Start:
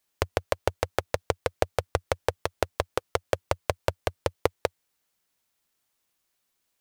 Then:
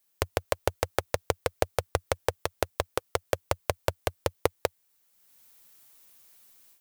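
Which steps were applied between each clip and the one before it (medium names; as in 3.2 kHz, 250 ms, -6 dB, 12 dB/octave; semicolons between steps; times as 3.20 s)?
treble shelf 9.4 kHz +11 dB; level rider gain up to 14 dB; trim -2 dB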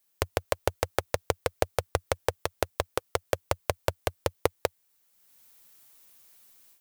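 no audible change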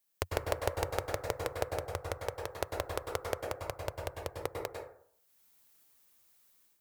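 random-step tremolo 1.2 Hz; plate-style reverb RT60 0.61 s, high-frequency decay 0.4×, pre-delay 90 ms, DRR 2 dB; trim -6 dB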